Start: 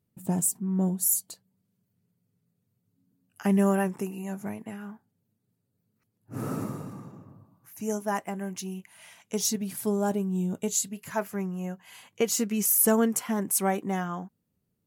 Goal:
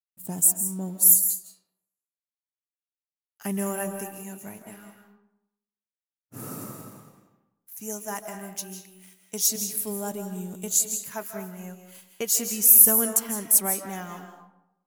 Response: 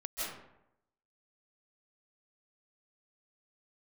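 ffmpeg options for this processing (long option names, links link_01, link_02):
-filter_complex "[0:a]aeval=exprs='sgn(val(0))*max(abs(val(0))-0.00168,0)':channel_layout=same,aemphasis=mode=production:type=75kf,agate=range=-33dB:threshold=-41dB:ratio=3:detection=peak,asplit=2[link_01][link_02];[1:a]atrim=start_sample=2205,lowshelf=frequency=250:gain=-7.5[link_03];[link_02][link_03]afir=irnorm=-1:irlink=0,volume=-5.5dB[link_04];[link_01][link_04]amix=inputs=2:normalize=0,volume=-8dB"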